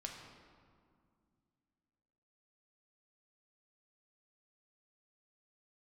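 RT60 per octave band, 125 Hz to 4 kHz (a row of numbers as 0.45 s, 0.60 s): 3.0 s, 3.1 s, 2.2 s, 2.1 s, 1.5 s, 1.2 s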